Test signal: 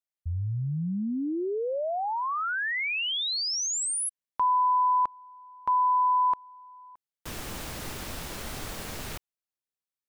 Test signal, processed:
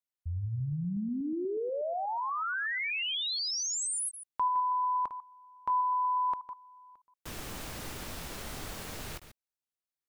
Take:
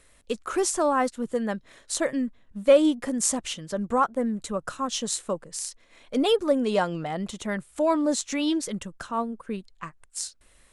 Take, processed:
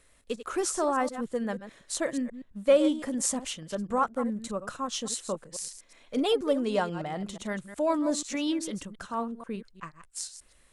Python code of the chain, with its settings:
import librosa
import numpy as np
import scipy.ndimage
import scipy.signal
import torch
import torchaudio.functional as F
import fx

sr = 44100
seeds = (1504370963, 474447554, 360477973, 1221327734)

y = fx.reverse_delay(x, sr, ms=121, wet_db=-11.5)
y = y * librosa.db_to_amplitude(-4.0)